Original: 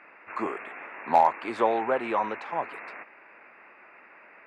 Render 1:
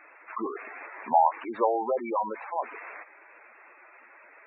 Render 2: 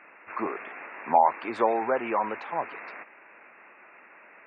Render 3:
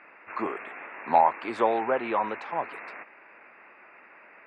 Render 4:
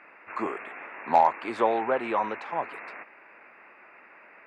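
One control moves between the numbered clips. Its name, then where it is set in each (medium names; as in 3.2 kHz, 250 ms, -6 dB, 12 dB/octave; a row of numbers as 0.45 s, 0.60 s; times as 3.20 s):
spectral gate, under each frame's peak: -10 dB, -30 dB, -45 dB, -60 dB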